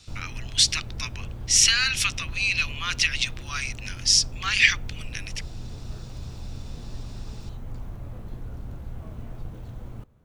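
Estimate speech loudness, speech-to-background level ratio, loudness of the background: -21.5 LUFS, 18.0 dB, -39.5 LUFS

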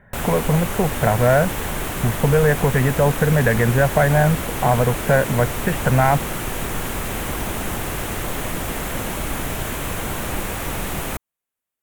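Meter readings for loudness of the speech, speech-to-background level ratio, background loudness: -19.0 LUFS, 7.0 dB, -26.0 LUFS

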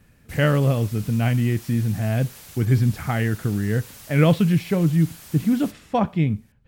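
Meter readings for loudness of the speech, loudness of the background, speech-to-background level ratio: -22.0 LUFS, -41.5 LUFS, 19.5 dB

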